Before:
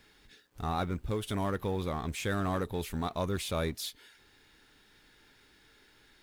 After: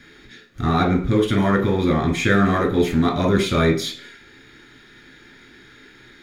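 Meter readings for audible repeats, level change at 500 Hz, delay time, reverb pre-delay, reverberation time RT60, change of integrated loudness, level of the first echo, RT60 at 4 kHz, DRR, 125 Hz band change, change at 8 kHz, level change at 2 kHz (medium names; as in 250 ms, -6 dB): no echo, +14.5 dB, no echo, 3 ms, 0.45 s, +14.5 dB, no echo, 0.40 s, -0.5 dB, +13.5 dB, +7.5 dB, +16.5 dB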